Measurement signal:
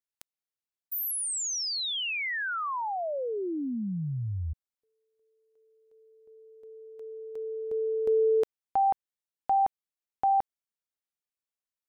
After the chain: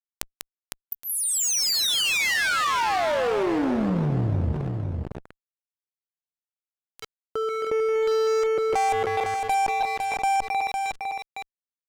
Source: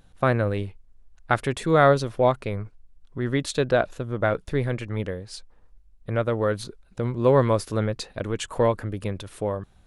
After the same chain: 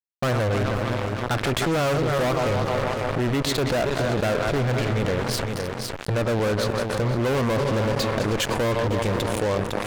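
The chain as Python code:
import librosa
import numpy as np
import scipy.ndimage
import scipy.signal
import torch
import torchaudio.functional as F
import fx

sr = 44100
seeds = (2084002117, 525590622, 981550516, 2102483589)

y = fx.reverse_delay_fb(x, sr, ms=156, feedback_pct=73, wet_db=-12.0)
y = fx.env_lowpass_down(y, sr, base_hz=1900.0, full_db=-16.5)
y = fx.fuzz(y, sr, gain_db=29.0, gate_db=-36.0)
y = y + 10.0 ** (-16.5 / 20.0) * np.pad(y, (int(506 * sr / 1000.0), 0))[:len(y)]
y = fx.env_flatten(y, sr, amount_pct=70)
y = y * librosa.db_to_amplitude(-7.5)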